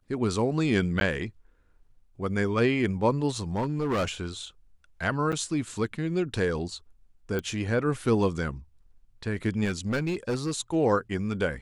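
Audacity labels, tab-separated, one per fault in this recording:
1.000000	1.010000	gap 11 ms
3.560000	4.090000	clipped -23 dBFS
5.320000	5.330000	gap 6.8 ms
7.390000	7.390000	pop -18 dBFS
9.640000	10.520000	clipped -23.5 dBFS

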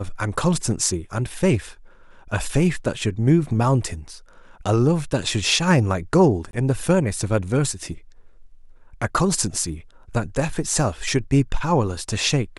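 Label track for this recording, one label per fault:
6.510000	6.530000	gap 22 ms

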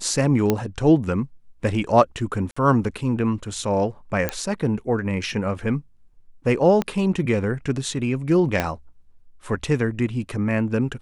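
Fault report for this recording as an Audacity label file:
0.500000	0.500000	pop -6 dBFS
2.510000	2.560000	gap 55 ms
4.290000	4.290000	pop -8 dBFS
6.820000	6.820000	pop -11 dBFS
8.600000	8.600000	pop -7 dBFS

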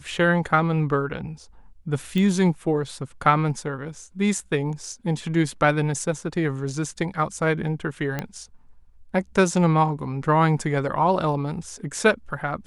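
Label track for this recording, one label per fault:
2.180000	2.180000	pop -14 dBFS
8.190000	8.190000	pop -13 dBFS

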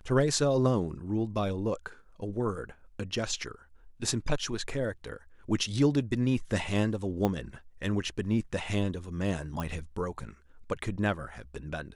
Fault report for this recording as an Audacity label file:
7.250000	7.250000	pop -15 dBFS
9.600000	9.600000	pop -21 dBFS

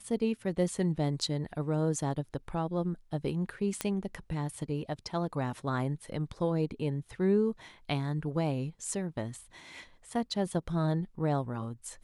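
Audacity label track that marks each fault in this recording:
3.810000	3.810000	pop -14 dBFS

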